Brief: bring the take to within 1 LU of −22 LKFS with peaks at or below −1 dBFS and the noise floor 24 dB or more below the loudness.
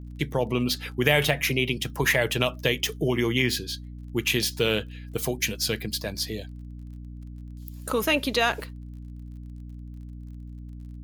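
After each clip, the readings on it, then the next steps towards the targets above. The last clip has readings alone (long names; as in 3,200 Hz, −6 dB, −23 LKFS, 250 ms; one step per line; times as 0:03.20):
crackle rate 27 per second; mains hum 60 Hz; hum harmonics up to 300 Hz; level of the hum −37 dBFS; integrated loudness −25.5 LKFS; sample peak −5.0 dBFS; target loudness −22.0 LKFS
→ click removal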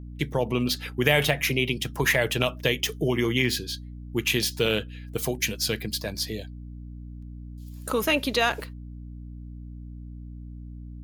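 crackle rate 2.4 per second; mains hum 60 Hz; hum harmonics up to 300 Hz; level of the hum −37 dBFS
→ mains-hum notches 60/120/180/240/300 Hz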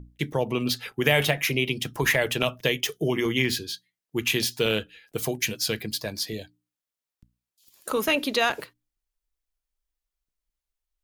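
mains hum none found; integrated loudness −25.5 LKFS; sample peak −5.0 dBFS; target loudness −22.0 LKFS
→ level +3.5 dB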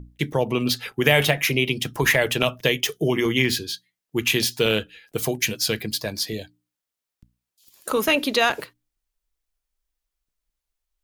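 integrated loudness −22.0 LKFS; sample peak −1.5 dBFS; background noise floor −86 dBFS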